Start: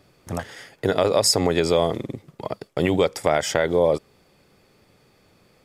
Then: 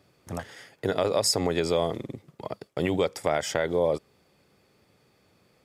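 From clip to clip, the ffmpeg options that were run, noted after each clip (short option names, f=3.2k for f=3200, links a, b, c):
-af "highpass=51,volume=-5.5dB"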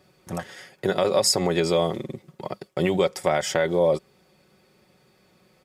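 -af "aecho=1:1:5.4:0.53,volume=2.5dB"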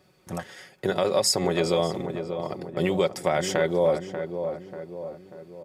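-filter_complex "[0:a]asplit=2[a][b];[b]adelay=589,lowpass=f=1.4k:p=1,volume=-7.5dB,asplit=2[c][d];[d]adelay=589,lowpass=f=1.4k:p=1,volume=0.53,asplit=2[e][f];[f]adelay=589,lowpass=f=1.4k:p=1,volume=0.53,asplit=2[g][h];[h]adelay=589,lowpass=f=1.4k:p=1,volume=0.53,asplit=2[i][j];[j]adelay=589,lowpass=f=1.4k:p=1,volume=0.53,asplit=2[k][l];[l]adelay=589,lowpass=f=1.4k:p=1,volume=0.53[m];[a][c][e][g][i][k][m]amix=inputs=7:normalize=0,volume=-2dB"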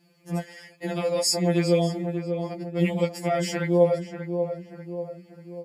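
-af "afftfilt=real='re*2.83*eq(mod(b,8),0)':imag='im*2.83*eq(mod(b,8),0)':win_size=2048:overlap=0.75,volume=1dB"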